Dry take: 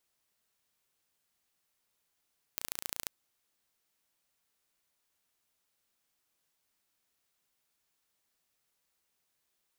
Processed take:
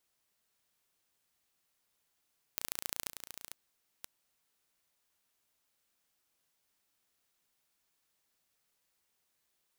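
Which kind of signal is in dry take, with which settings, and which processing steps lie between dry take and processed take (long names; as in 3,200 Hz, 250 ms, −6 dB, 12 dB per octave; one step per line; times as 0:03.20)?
impulse train 28.7 per second, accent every 2, −7 dBFS 0.51 s
delay that plays each chunk backwards 508 ms, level −8.5 dB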